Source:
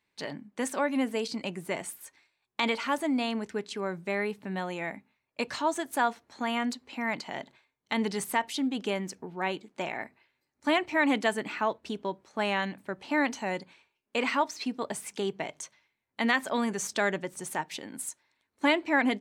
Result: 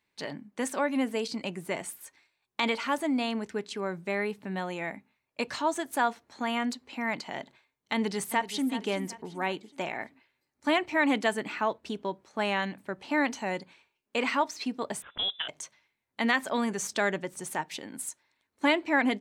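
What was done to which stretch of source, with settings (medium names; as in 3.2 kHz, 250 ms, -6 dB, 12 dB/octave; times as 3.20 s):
7.93–8.67 s: echo throw 380 ms, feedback 40%, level -12.5 dB
15.02–15.48 s: frequency inversion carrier 3.7 kHz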